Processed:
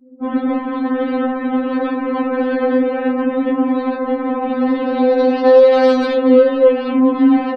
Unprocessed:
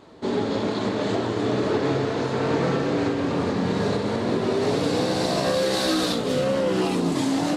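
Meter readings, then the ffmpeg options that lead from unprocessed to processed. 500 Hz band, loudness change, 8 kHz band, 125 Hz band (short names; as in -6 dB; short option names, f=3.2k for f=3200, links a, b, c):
+10.0 dB, +8.5 dB, under -15 dB, under -15 dB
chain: -filter_complex "[0:a]aemphasis=mode=reproduction:type=cd,asplit=2[a][b];[b]aecho=0:1:106:0.0944[c];[a][c]amix=inputs=2:normalize=0,adynamicsmooth=sensitivity=3.5:basefreq=600,asplit=2[d][e];[e]aecho=0:1:421:0.158[f];[d][f]amix=inputs=2:normalize=0,afftdn=nr=34:nf=-44,alimiter=level_in=16dB:limit=-1dB:release=50:level=0:latency=1,afftfilt=real='re*3.46*eq(mod(b,12),0)':imag='im*3.46*eq(mod(b,12),0)':win_size=2048:overlap=0.75,volume=-5dB"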